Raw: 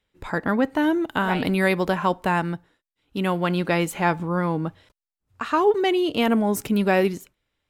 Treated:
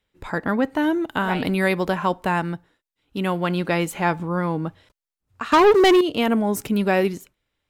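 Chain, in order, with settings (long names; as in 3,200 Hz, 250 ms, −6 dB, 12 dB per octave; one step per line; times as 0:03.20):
0:05.52–0:06.01: leveller curve on the samples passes 3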